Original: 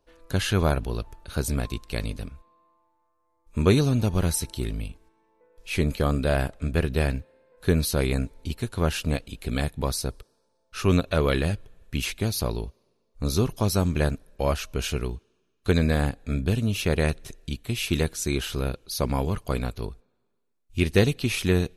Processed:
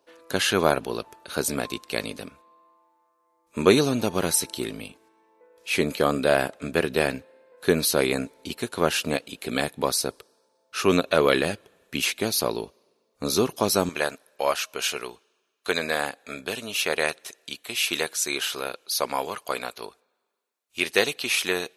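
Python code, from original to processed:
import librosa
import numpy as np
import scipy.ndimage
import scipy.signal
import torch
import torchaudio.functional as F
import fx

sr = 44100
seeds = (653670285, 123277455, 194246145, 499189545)

y = fx.highpass(x, sr, hz=fx.steps((0.0, 300.0), (13.89, 640.0)), slope=12)
y = y * librosa.db_to_amplitude(5.5)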